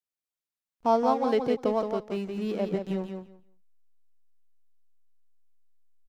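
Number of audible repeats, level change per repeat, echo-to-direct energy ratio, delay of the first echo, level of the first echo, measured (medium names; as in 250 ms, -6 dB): 2, -16.0 dB, -6.0 dB, 172 ms, -6.0 dB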